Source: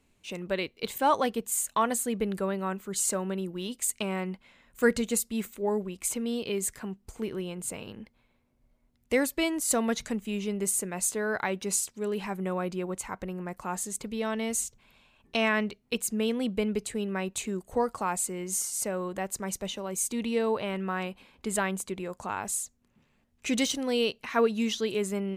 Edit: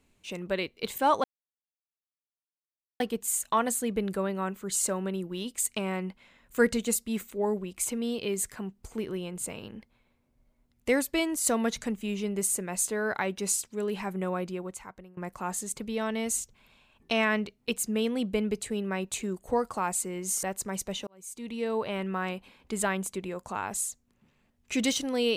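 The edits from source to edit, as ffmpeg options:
ffmpeg -i in.wav -filter_complex "[0:a]asplit=5[link_01][link_02][link_03][link_04][link_05];[link_01]atrim=end=1.24,asetpts=PTS-STARTPTS,afade=type=out:start_time=1.236:duration=0.004:curve=hsin,apad=pad_dur=1.76[link_06];[link_02]atrim=start=1.24:end=13.41,asetpts=PTS-STARTPTS,afade=type=in:duration=0.004:curve=hsin,afade=type=out:start_time=11.33:duration=0.84:silence=0.0749894[link_07];[link_03]atrim=start=13.41:end=18.672,asetpts=PTS-STARTPTS,afade=type=in:duration=0.004:curve=hsin:silence=0.0749894[link_08];[link_04]atrim=start=19.168:end=19.81,asetpts=PTS-STARTPTS,afade=type=out:start_time=0.638:duration=0.004:curve=hsin[link_09];[link_05]atrim=start=19.81,asetpts=PTS-STARTPTS,afade=type=in:duration=0.89[link_10];[link_06][link_07][link_08]concat=n=3:v=0:a=1[link_11];[link_09][link_10]concat=n=2:v=0:a=1[link_12];[link_11][link_12]acrossfade=duration=0.004:curve1=hsin:curve2=hsin" out.wav

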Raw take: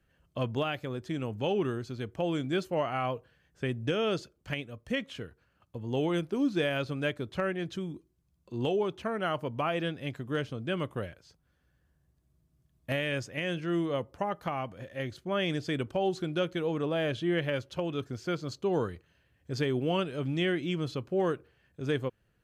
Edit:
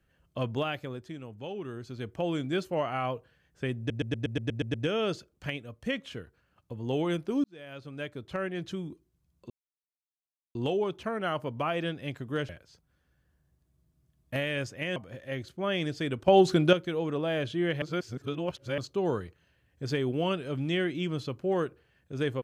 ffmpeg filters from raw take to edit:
ffmpeg -i in.wav -filter_complex "[0:a]asplit=19[link_01][link_02][link_03][link_04][link_05][link_06][link_07][link_08][link_09][link_10][link_11][link_12][link_13][link_14][link_15][link_16][link_17][link_18][link_19];[link_01]atrim=end=1.19,asetpts=PTS-STARTPTS,afade=type=out:start_time=0.75:duration=0.44:silence=0.354813[link_20];[link_02]atrim=start=1.19:end=1.64,asetpts=PTS-STARTPTS,volume=-9dB[link_21];[link_03]atrim=start=1.64:end=3.902,asetpts=PTS-STARTPTS,afade=type=in:duration=0.44:silence=0.354813[link_22];[link_04]atrim=start=3.778:end=3.902[link_23];[link_05]atrim=start=3.778:end=3.902[link_24];[link_06]atrim=start=3.778:end=3.902[link_25];[link_07]atrim=start=3.778:end=3.902[link_26];[link_08]atrim=start=3.778:end=3.902[link_27];[link_09]atrim=start=3.778:end=3.902[link_28];[link_10]atrim=start=3.778:end=3.902[link_29];[link_11]atrim=start=3.778:end=6.48,asetpts=PTS-STARTPTS,afade=type=out:start_time=2.698:duration=0.004:curve=hsin[link_30];[link_12]atrim=start=6.48:end=8.54,asetpts=PTS-STARTPTS,afade=type=in:duration=1.24,afade=type=out:start_time=2.056:duration=0.004:curve=hsin,apad=pad_dur=1.05[link_31];[link_13]atrim=start=8.54:end=10.482,asetpts=PTS-STARTPTS,afade=type=in:duration=0.004:curve=hsin[link_32];[link_14]atrim=start=11.048:end=13.522[link_33];[link_15]atrim=start=14.638:end=15.962[link_34];[link_16]atrim=start=15.958:end=16.412,asetpts=PTS-STARTPTS,volume=9.5dB[link_35];[link_17]atrim=start=16.408:end=17.502[link_36];[link_18]atrim=start=17.498:end=18.462,asetpts=PTS-STARTPTS,areverse[link_37];[link_19]atrim=start=18.458[link_38];[link_20][link_21][link_22]concat=n=3:v=0:a=1[link_39];[link_39][link_23]acrossfade=duration=0.004:curve1=hsin:curve2=hsin[link_40];[link_40][link_24]acrossfade=duration=0.004:curve1=hsin:curve2=hsin[link_41];[link_41][link_25]acrossfade=duration=0.004:curve1=hsin:curve2=hsin[link_42];[link_42][link_26]acrossfade=duration=0.004:curve1=hsin:curve2=hsin[link_43];[link_43][link_27]acrossfade=duration=0.004:curve1=hsin:curve2=hsin[link_44];[link_44][link_28]acrossfade=duration=0.004:curve1=hsin:curve2=hsin[link_45];[link_45][link_29]acrossfade=duration=0.004:curve1=hsin:curve2=hsin[link_46];[link_30][link_31][link_32]concat=n=3:v=0:a=1[link_47];[link_46][link_47]acrossfade=duration=0.004:curve1=hsin:curve2=hsin[link_48];[link_48][link_33]acrossfade=duration=0.004:curve1=hsin:curve2=hsin[link_49];[link_49][link_34]acrossfade=duration=0.004:curve1=hsin:curve2=hsin[link_50];[link_50][link_35]acrossfade=duration=0.004:curve1=hsin:curve2=hsin[link_51];[link_51][link_36]acrossfade=duration=0.004:curve1=hsin:curve2=hsin[link_52];[link_52][link_37]acrossfade=duration=0.004:curve1=hsin:curve2=hsin[link_53];[link_53][link_38]acrossfade=duration=0.004:curve1=hsin:curve2=hsin" out.wav

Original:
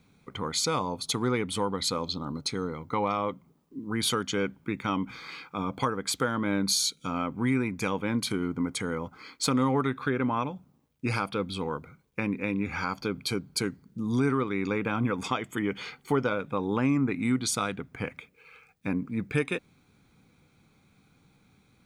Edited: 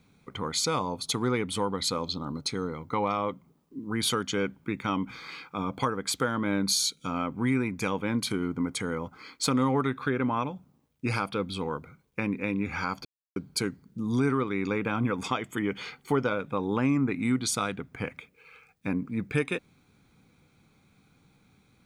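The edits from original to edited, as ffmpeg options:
ffmpeg -i in.wav -filter_complex "[0:a]asplit=3[link_01][link_02][link_03];[link_01]atrim=end=13.05,asetpts=PTS-STARTPTS,afade=type=out:start_time=13.046:duration=0.004:curve=hsin[link_04];[link_02]atrim=start=13.05:end=13.36,asetpts=PTS-STARTPTS,volume=0[link_05];[link_03]atrim=start=13.36,asetpts=PTS-STARTPTS,afade=type=in:duration=0.004:curve=hsin[link_06];[link_04][link_05][link_06]concat=n=3:v=0:a=1" out.wav

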